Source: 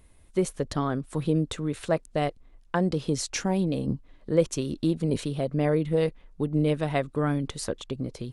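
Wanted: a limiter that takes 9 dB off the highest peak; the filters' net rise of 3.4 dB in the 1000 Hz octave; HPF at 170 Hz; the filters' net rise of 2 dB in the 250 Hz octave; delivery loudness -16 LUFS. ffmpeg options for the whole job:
-af "highpass=170,equalizer=f=250:t=o:g=4,equalizer=f=1k:t=o:g=4.5,volume=13dB,alimiter=limit=-4dB:level=0:latency=1"

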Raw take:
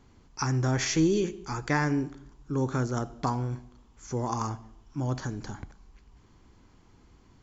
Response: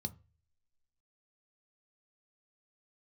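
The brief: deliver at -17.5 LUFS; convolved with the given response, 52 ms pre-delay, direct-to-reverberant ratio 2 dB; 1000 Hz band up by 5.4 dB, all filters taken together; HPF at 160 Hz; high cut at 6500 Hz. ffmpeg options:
-filter_complex "[0:a]highpass=160,lowpass=6.5k,equalizer=f=1k:t=o:g=6.5,asplit=2[a][b];[1:a]atrim=start_sample=2205,adelay=52[c];[b][c]afir=irnorm=-1:irlink=0,volume=0dB[d];[a][d]amix=inputs=2:normalize=0,volume=7dB"

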